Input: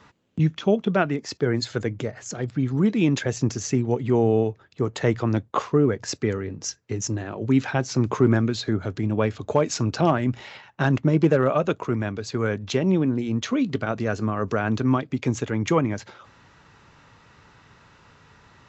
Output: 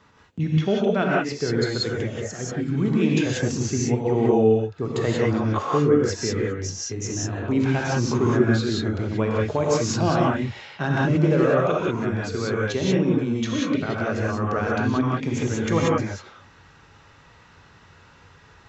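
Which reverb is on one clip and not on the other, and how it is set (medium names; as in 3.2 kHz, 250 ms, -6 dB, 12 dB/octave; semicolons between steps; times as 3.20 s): gated-style reverb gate 210 ms rising, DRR -4.5 dB; trim -4 dB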